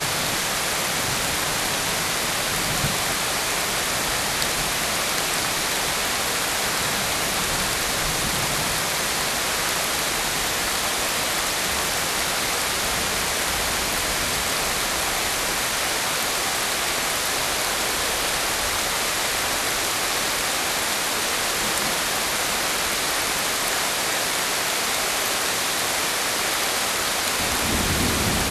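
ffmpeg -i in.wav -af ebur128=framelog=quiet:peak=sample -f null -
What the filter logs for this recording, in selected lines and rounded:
Integrated loudness:
  I:         -21.4 LUFS
  Threshold: -31.4 LUFS
Loudness range:
  LRA:         0.3 LU
  Threshold: -41.4 LUFS
  LRA low:   -21.5 LUFS
  LRA high:  -21.2 LUFS
Sample peak:
  Peak:       -1.3 dBFS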